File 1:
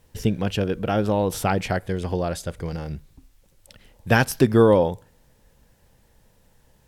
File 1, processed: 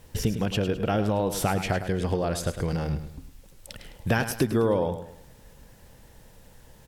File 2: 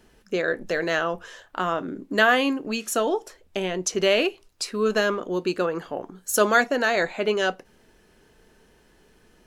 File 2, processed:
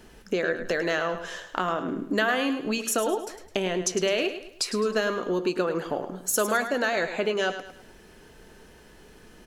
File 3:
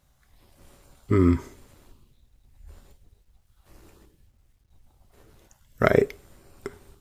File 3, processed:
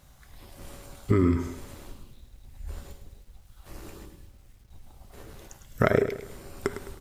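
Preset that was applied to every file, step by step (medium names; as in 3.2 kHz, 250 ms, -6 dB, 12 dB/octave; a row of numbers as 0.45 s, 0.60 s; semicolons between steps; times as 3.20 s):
compression 3:1, threshold -32 dBFS; feedback delay 105 ms, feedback 38%, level -10.5 dB; normalise loudness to -27 LUFS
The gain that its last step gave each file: +6.5 dB, +6.0 dB, +9.0 dB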